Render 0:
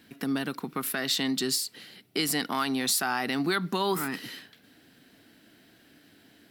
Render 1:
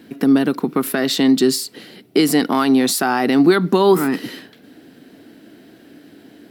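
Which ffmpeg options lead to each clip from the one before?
ffmpeg -i in.wav -af "equalizer=frequency=350:width=0.51:gain=12,volume=5dB" out.wav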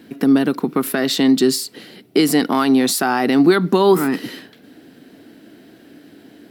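ffmpeg -i in.wav -af anull out.wav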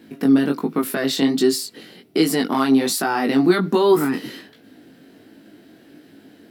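ffmpeg -i in.wav -af "flanger=delay=18:depth=4.7:speed=1.3" out.wav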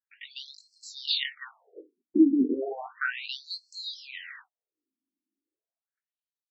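ffmpeg -i in.wav -af "agate=range=-43dB:threshold=-39dB:ratio=16:detection=peak,afftfilt=real='re*between(b*sr/1024,250*pow(5900/250,0.5+0.5*sin(2*PI*0.34*pts/sr))/1.41,250*pow(5900/250,0.5+0.5*sin(2*PI*0.34*pts/sr))*1.41)':imag='im*between(b*sr/1024,250*pow(5900/250,0.5+0.5*sin(2*PI*0.34*pts/sr))/1.41,250*pow(5900/250,0.5+0.5*sin(2*PI*0.34*pts/sr))*1.41)':win_size=1024:overlap=0.75" out.wav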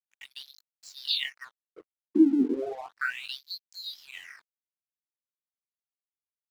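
ffmpeg -i in.wav -af "aeval=exprs='sgn(val(0))*max(abs(val(0))-0.00335,0)':channel_layout=same" out.wav

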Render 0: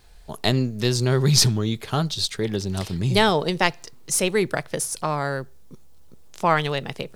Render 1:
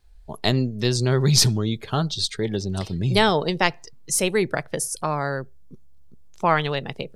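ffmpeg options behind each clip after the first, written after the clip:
ffmpeg -i in.wav -af "afftdn=noise_reduction=14:noise_floor=-41" out.wav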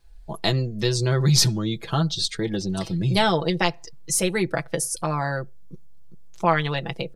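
ffmpeg -i in.wav -filter_complex "[0:a]aecho=1:1:6:0.71,asplit=2[link_01][link_02];[link_02]acompressor=threshold=-25dB:ratio=6,volume=-1dB[link_03];[link_01][link_03]amix=inputs=2:normalize=0,volume=-5dB" out.wav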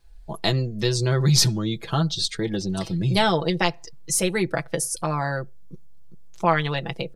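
ffmpeg -i in.wav -af anull out.wav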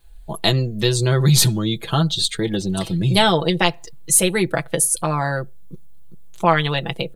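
ffmpeg -i in.wav -af "aexciter=amount=1.3:drive=3.3:freq=2900,volume=4dB" out.wav

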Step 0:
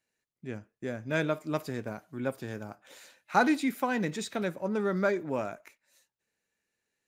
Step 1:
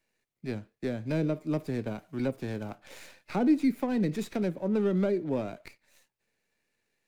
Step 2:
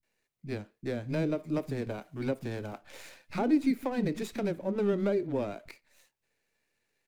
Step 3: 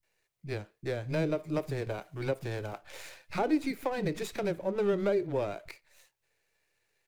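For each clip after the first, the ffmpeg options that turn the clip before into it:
ffmpeg -i in.wav -filter_complex "[0:a]equalizer=frequency=2300:width=2:gain=8,acrossover=split=490[link_01][link_02];[link_02]acompressor=threshold=-41dB:ratio=10[link_03];[link_01][link_03]amix=inputs=2:normalize=0,acrossover=split=190|1000[link_04][link_05][link_06];[link_06]aeval=exprs='max(val(0),0)':channel_layout=same[link_07];[link_04][link_05][link_07]amix=inputs=3:normalize=0,volume=4.5dB" out.wav
ffmpeg -i in.wav -filter_complex "[0:a]acrossover=split=210[link_01][link_02];[link_02]adelay=30[link_03];[link_01][link_03]amix=inputs=2:normalize=0" out.wav
ffmpeg -i in.wav -af "equalizer=frequency=240:width_type=o:width=0.47:gain=-14.5,volume=2.5dB" out.wav

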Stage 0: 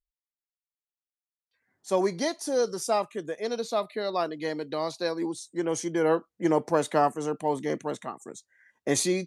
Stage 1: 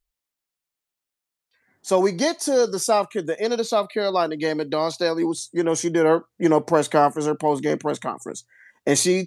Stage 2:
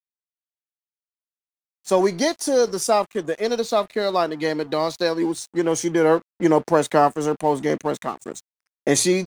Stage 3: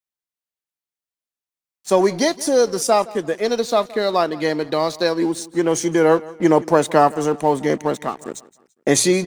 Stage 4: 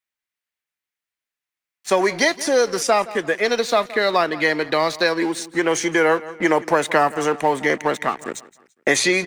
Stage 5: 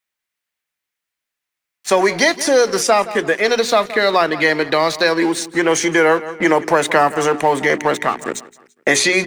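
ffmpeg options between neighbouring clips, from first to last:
ffmpeg -i in.wav -filter_complex "[0:a]bandreject=frequency=60:width_type=h:width=6,bandreject=frequency=120:width_type=h:width=6,asplit=2[link_01][link_02];[link_02]acompressor=threshold=-31dB:ratio=6,volume=-1dB[link_03];[link_01][link_03]amix=inputs=2:normalize=0,volume=4dB" out.wav
ffmpeg -i in.wav -af "aeval=exprs='sgn(val(0))*max(abs(val(0))-0.00794,0)':channel_layout=same,volume=1dB" out.wav
ffmpeg -i in.wav -af "aecho=1:1:169|338|507:0.0944|0.0368|0.0144,volume=2.5dB" out.wav
ffmpeg -i in.wav -filter_complex "[0:a]equalizer=frequency=2000:width_type=o:width=1.4:gain=11,acrossover=split=340|6900[link_01][link_02][link_03];[link_01]acompressor=threshold=-30dB:ratio=4[link_04];[link_02]acompressor=threshold=-14dB:ratio=4[link_05];[link_03]acompressor=threshold=-33dB:ratio=4[link_06];[link_04][link_05][link_06]amix=inputs=3:normalize=0" out.wav
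ffmpeg -i in.wav -filter_complex "[0:a]bandreject=frequency=60:width_type=h:width=6,bandreject=frequency=120:width_type=h:width=6,bandreject=frequency=180:width_type=h:width=6,bandreject=frequency=240:width_type=h:width=6,bandreject=frequency=300:width_type=h:width=6,bandreject=frequency=360:width_type=h:width=6,bandreject=frequency=420:width_type=h:width=6,asplit=2[link_01][link_02];[link_02]alimiter=limit=-15dB:level=0:latency=1,volume=-2.5dB[link_03];[link_01][link_03]amix=inputs=2:normalize=0,volume=1dB" out.wav

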